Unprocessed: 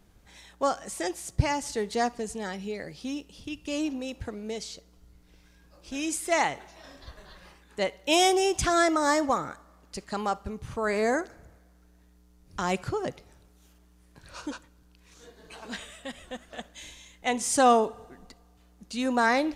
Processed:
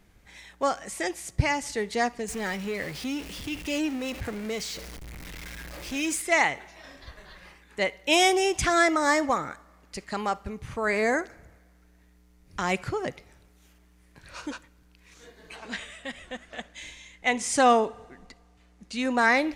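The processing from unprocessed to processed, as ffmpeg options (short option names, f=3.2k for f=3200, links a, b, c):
-filter_complex "[0:a]asettb=1/sr,asplit=3[a][b][c];[a]atrim=end=2.284[d];[b]atrim=start=2.28:end=6.22,asetpts=PTS-STARTPTS,afade=t=in:d=0.004:c=qsin,afade=t=out:st=3.936:d=0.004:c=qsin,aeval=exprs='val(0)+0.5*0.015*sgn(val(0))':c=same[e];[c]atrim=start=6.216[f];[d][e]acrossfade=d=0.004:c1=hsin:c2=qsin[g];[g][f]acrossfade=d=0.004:c1=qsin:c2=hsin,asettb=1/sr,asplit=3[h][i][j];[h]atrim=end=15.564[k];[i]atrim=start=15.56:end=19.18,asetpts=PTS-STARTPTS,afade=t=in:d=0.004:c=qsin,afade=t=out:st=3.616:d=0.004:c=qsin,lowpass=9.4k[l];[j]atrim=start=19.176[m];[k][l]acrossfade=d=0.004:c1=hsin:c2=qsin[n];[n][m]acrossfade=d=0.004:c1=qsin:c2=hsin,equalizer=f=2.1k:t=o:w=0.67:g=7.5"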